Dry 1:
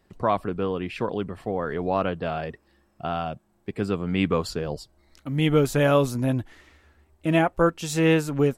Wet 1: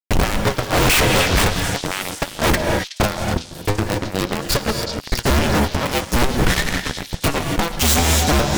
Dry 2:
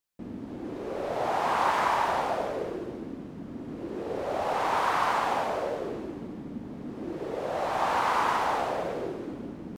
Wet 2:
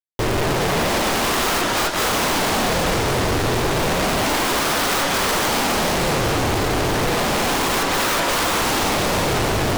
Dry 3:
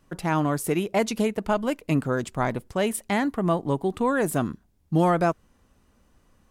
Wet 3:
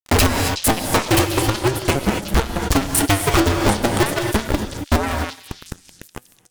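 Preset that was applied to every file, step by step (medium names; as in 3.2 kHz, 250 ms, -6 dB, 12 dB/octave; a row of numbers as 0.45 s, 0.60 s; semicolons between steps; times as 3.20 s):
cycle switcher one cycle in 2, inverted; in parallel at 0 dB: gain riding within 5 dB 2 s; on the sum: bass shelf 82 Hz +9.5 dB; inverted gate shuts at -8 dBFS, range -33 dB; fuzz box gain 39 dB, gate -42 dBFS; flange 0.44 Hz, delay 3.3 ms, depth 8.9 ms, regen +73%; gated-style reverb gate 300 ms rising, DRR 11 dB; waveshaping leveller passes 2; wavefolder -17 dBFS; repeats whose band climbs or falls 371 ms, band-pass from 4.4 kHz, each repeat 0.7 oct, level -6 dB; normalise loudness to -19 LUFS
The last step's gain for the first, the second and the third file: +7.5 dB, +2.0 dB, +7.5 dB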